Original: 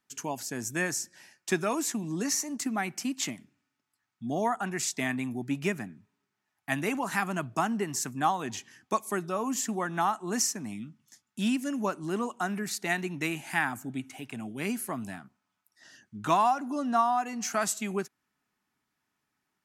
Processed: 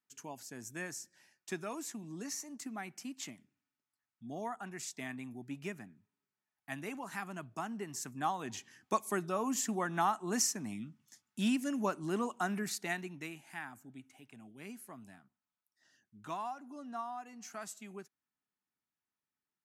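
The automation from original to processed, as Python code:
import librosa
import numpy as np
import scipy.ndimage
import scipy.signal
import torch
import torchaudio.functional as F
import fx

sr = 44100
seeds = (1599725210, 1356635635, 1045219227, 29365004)

y = fx.gain(x, sr, db=fx.line((7.61, -12.0), (8.98, -3.5), (12.65, -3.5), (13.45, -16.0)))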